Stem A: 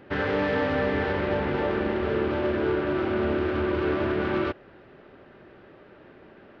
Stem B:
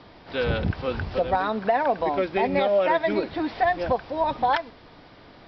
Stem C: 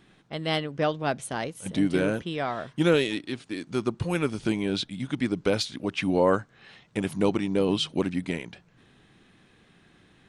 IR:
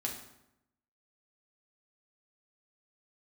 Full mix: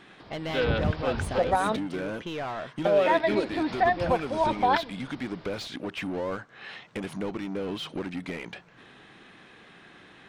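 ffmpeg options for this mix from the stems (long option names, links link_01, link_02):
-filter_complex "[1:a]adelay=200,volume=-1dB,asplit=3[link_01][link_02][link_03];[link_01]atrim=end=1.76,asetpts=PTS-STARTPTS,afade=type=out:start_time=1.756:duration=0.004:curve=hsin[link_04];[link_02]atrim=start=1.76:end=2.85,asetpts=PTS-STARTPTS,volume=0[link_05];[link_03]atrim=start=2.85,asetpts=PTS-STARTPTS,afade=type=in:duration=0.004:curve=hsin[link_06];[link_04][link_05][link_06]concat=n=3:v=0:a=1[link_07];[2:a]volume=1dB,asplit=2[link_08][link_09];[link_09]highpass=frequency=720:poles=1,volume=17dB,asoftclip=type=tanh:threshold=-23dB[link_10];[link_08][link_10]amix=inputs=2:normalize=0,lowpass=frequency=2200:poles=1,volume=-6dB,acompressor=threshold=-34dB:ratio=2,volume=0dB[link_11];[link_07][link_11]amix=inputs=2:normalize=0"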